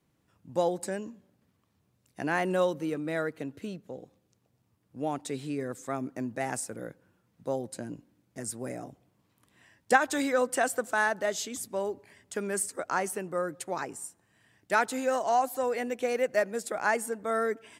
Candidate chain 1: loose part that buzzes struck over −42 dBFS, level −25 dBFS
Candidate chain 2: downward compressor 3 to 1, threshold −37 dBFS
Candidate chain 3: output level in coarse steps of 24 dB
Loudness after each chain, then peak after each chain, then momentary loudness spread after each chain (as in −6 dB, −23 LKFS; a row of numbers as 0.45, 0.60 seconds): −30.5, −39.5, −36.0 LKFS; −6.5, −19.0, −13.0 dBFS; 13, 9, 20 LU